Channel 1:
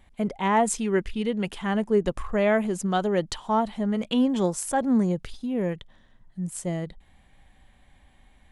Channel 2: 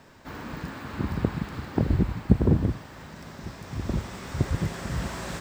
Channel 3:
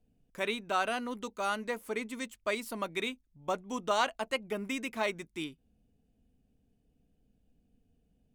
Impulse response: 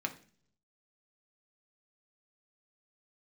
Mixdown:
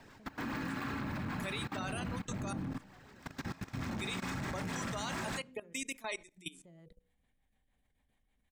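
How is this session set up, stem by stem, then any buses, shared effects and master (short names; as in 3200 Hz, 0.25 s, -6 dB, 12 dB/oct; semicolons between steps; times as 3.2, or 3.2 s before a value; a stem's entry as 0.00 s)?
-10.0 dB, 0.00 s, bus A, no send, de-hum 61.21 Hz, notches 9; compressor 3:1, threshold -35 dBFS, peak gain reduction 14 dB
+2.0 dB, 0.00 s, bus A, send -10 dB, AGC gain up to 7.5 dB; hard clip -23.5 dBFS, distortion -4 dB
-6.5 dB, 1.05 s, muted 2.53–3.96, no bus, send -7 dB, tone controls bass -10 dB, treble +15 dB; spectral gate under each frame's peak -20 dB strong; HPF 51 Hz
bus A: 0.0 dB, rotary speaker horn 6.7 Hz; compressor 16:1, threshold -36 dBFS, peak gain reduction 14 dB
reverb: on, RT60 0.45 s, pre-delay 3 ms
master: level quantiser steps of 19 dB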